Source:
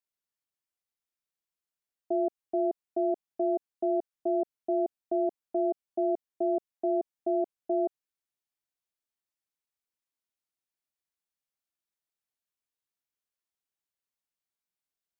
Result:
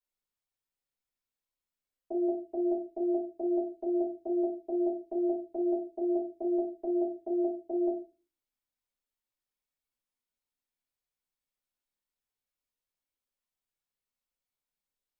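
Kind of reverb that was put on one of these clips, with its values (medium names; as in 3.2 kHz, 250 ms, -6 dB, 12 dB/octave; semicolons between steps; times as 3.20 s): simulated room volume 120 m³, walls furnished, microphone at 4.5 m; trim -10.5 dB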